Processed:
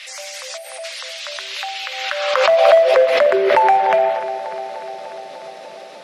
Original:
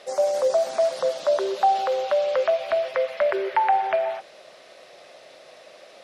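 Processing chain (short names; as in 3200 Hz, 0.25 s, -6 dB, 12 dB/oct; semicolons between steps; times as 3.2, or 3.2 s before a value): high-pass sweep 2300 Hz -> 180 Hz, 1.93–3.42; in parallel at -11 dB: wavefolder -18.5 dBFS; on the sum: spectral gain 0.57–0.84, 890–8100 Hz -19 dB; dark delay 0.298 s, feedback 70%, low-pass 3400 Hz, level -12.5 dB; backwards sustainer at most 37 dB/s; gain +4.5 dB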